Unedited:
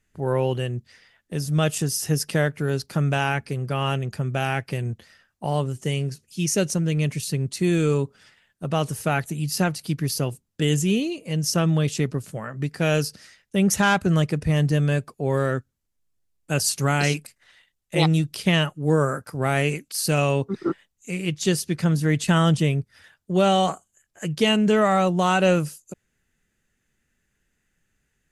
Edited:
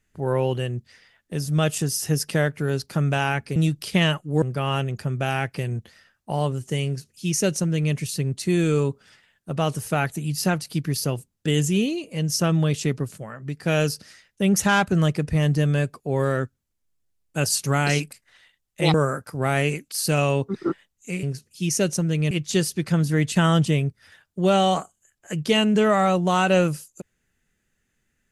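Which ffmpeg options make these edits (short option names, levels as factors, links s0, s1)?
-filter_complex "[0:a]asplit=8[s0][s1][s2][s3][s4][s5][s6][s7];[s0]atrim=end=3.562[s8];[s1]atrim=start=18.078:end=18.942[s9];[s2]atrim=start=3.558:end=12.322[s10];[s3]atrim=start=12.318:end=12.772,asetpts=PTS-STARTPTS,volume=0.631[s11];[s4]atrim=start=12.768:end=18.082[s12];[s5]atrim=start=18.938:end=21.232[s13];[s6]atrim=start=5.998:end=7.082[s14];[s7]atrim=start=21.228[s15];[s8][s9]acrossfade=d=0.004:c1=hsin:c2=hsin[s16];[s16][s10]acrossfade=d=0.004:c1=hsin:c2=hsin[s17];[s17][s11]acrossfade=d=0.004:c1=hsin:c2=hsin[s18];[s18][s12]acrossfade=d=0.004:c1=hsin:c2=hsin[s19];[s19][s13]acrossfade=d=0.004:c1=hsin:c2=hsin[s20];[s20][s14]acrossfade=d=0.004:c1=hsin:c2=hsin[s21];[s21][s15]acrossfade=d=0.004:c1=hsin:c2=hsin"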